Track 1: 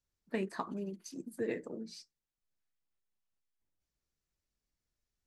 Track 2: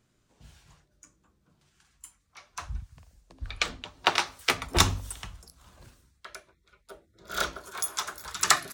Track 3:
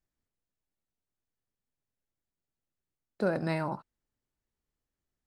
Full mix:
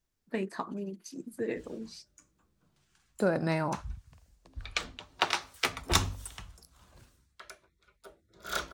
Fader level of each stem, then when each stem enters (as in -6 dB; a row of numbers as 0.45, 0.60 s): +2.0, -4.5, +1.5 dB; 0.00, 1.15, 0.00 s